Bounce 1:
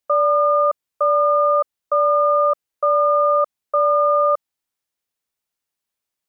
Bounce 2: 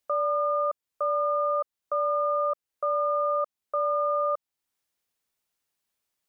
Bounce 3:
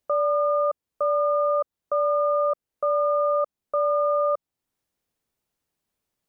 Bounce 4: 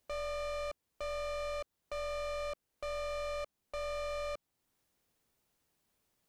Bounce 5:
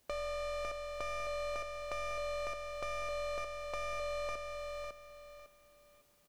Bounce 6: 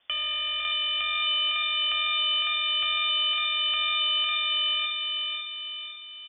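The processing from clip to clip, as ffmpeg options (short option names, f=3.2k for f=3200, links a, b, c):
-af "alimiter=limit=-21dB:level=0:latency=1:release=447,volume=1.5dB"
-af "tiltshelf=f=710:g=6,volume=4dB"
-af "alimiter=level_in=0.5dB:limit=-24dB:level=0:latency=1:release=11,volume=-0.5dB,aeval=exprs='(tanh(112*val(0)+0.3)-tanh(0.3))/112':c=same,volume=4dB"
-filter_complex "[0:a]acompressor=threshold=-46dB:ratio=3,asplit=2[a][b];[b]aecho=0:1:553|1106|1659|2212:0.631|0.177|0.0495|0.0139[c];[a][c]amix=inputs=2:normalize=0,volume=6.5dB"
-filter_complex "[0:a]asplit=2[a][b];[b]adelay=505,lowpass=f=1.8k:p=1,volume=-3.5dB,asplit=2[c][d];[d]adelay=505,lowpass=f=1.8k:p=1,volume=0.46,asplit=2[e][f];[f]adelay=505,lowpass=f=1.8k:p=1,volume=0.46,asplit=2[g][h];[h]adelay=505,lowpass=f=1.8k:p=1,volume=0.46,asplit=2[i][j];[j]adelay=505,lowpass=f=1.8k:p=1,volume=0.46,asplit=2[k][l];[l]adelay=505,lowpass=f=1.8k:p=1,volume=0.46[m];[a][c][e][g][i][k][m]amix=inputs=7:normalize=0,lowpass=f=3.1k:t=q:w=0.5098,lowpass=f=3.1k:t=q:w=0.6013,lowpass=f=3.1k:t=q:w=0.9,lowpass=f=3.1k:t=q:w=2.563,afreqshift=-3600,volume=9dB"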